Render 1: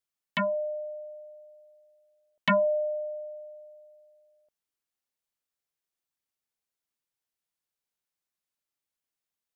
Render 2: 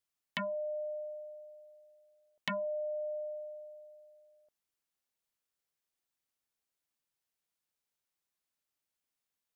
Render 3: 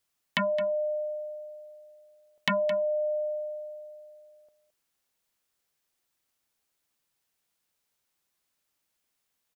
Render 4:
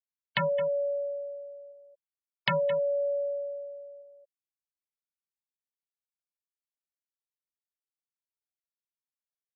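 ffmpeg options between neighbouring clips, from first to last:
-af "acompressor=threshold=-35dB:ratio=6"
-af "aecho=1:1:217:0.237,volume=9dB"
-af "afreqshift=-37,bandreject=f=50:t=h:w=6,bandreject=f=100:t=h:w=6,bandreject=f=150:t=h:w=6,bandreject=f=200:t=h:w=6,afftfilt=real='re*gte(hypot(re,im),0.0282)':imag='im*gte(hypot(re,im),0.0282)':win_size=1024:overlap=0.75"

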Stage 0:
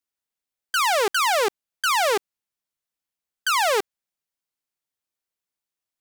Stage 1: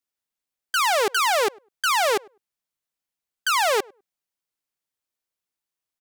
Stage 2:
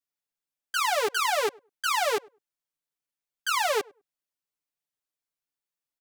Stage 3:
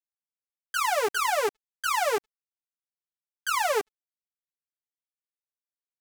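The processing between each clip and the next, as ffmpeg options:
-filter_complex "[0:a]asplit=2[a][b];[b]adelay=101,lowpass=f=1.1k:p=1,volume=-24dB,asplit=2[c][d];[d]adelay=101,lowpass=f=1.1k:p=1,volume=0.17[e];[a][c][e]amix=inputs=3:normalize=0"
-af "aecho=1:1:6.9:1,volume=-8dB"
-af "equalizer=f=3.7k:t=o:w=1:g=-5.5,aeval=exprs='sgn(val(0))*max(abs(val(0))-0.00596,0)':c=same,volume=1.5dB"

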